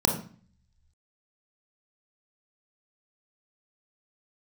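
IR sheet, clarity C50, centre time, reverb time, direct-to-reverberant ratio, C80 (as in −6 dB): 7.0 dB, 22 ms, 0.45 s, 2.0 dB, 11.0 dB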